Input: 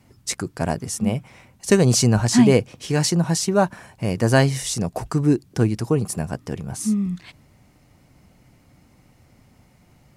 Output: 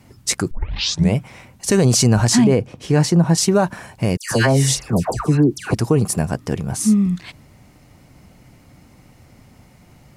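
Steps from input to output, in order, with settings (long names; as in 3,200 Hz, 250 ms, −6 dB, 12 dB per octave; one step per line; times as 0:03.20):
0:00.51: tape start 0.64 s
0:02.44–0:03.38: high-shelf EQ 2,000 Hz −10 dB
0:04.17–0:05.74: all-pass dispersion lows, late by 143 ms, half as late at 1,500 Hz
boost into a limiter +12 dB
level −5.5 dB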